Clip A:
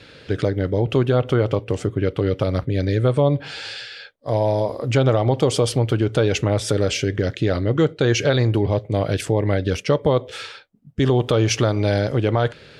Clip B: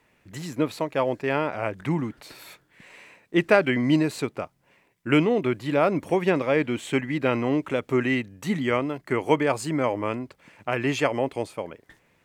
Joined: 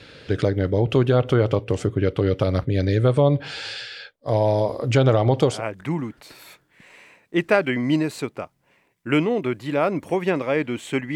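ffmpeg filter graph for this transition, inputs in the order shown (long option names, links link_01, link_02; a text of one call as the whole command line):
ffmpeg -i cue0.wav -i cue1.wav -filter_complex "[0:a]apad=whole_dur=11.15,atrim=end=11.15,atrim=end=5.62,asetpts=PTS-STARTPTS[link_01];[1:a]atrim=start=1.44:end=7.15,asetpts=PTS-STARTPTS[link_02];[link_01][link_02]acrossfade=duration=0.18:curve1=tri:curve2=tri" out.wav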